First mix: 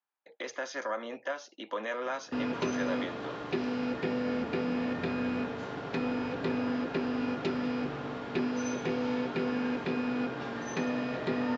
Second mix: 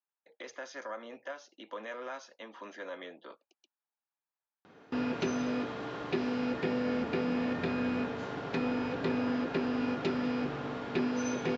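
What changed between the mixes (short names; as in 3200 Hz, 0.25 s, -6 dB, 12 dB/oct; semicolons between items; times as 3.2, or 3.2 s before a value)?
speech -6.5 dB; background: entry +2.60 s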